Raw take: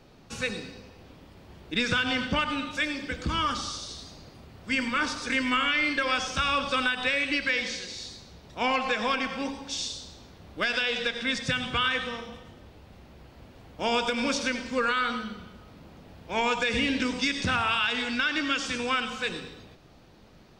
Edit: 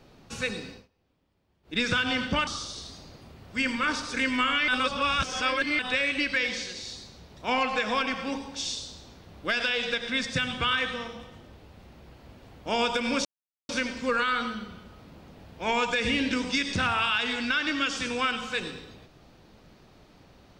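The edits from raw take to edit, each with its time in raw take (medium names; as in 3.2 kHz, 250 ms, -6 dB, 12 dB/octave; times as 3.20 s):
0.72–1.79 s: dip -22.5 dB, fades 0.16 s
2.47–3.60 s: delete
5.81–6.92 s: reverse
14.38 s: insert silence 0.44 s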